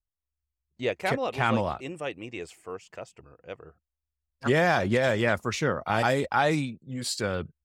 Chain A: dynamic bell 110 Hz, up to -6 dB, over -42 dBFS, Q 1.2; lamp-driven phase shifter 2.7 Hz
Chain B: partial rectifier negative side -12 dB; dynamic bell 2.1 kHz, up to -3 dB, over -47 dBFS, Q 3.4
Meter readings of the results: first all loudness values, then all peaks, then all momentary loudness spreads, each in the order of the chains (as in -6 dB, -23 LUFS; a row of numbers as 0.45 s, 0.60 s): -30.5 LUFS, -29.5 LUFS; -12.0 dBFS, -9.5 dBFS; 19 LU, 18 LU